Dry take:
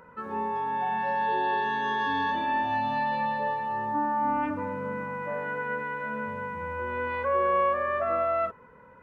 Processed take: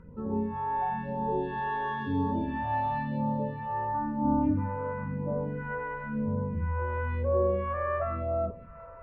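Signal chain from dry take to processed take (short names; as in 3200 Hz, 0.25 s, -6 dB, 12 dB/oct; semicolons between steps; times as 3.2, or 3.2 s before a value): high shelf 2400 Hz -9 dB; on a send: thinning echo 0.199 s, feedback 70%, high-pass 170 Hz, level -19.5 dB; on the sum: phaser stages 2, 0.98 Hz, lowest notch 190–2000 Hz; tilt -4 dB/oct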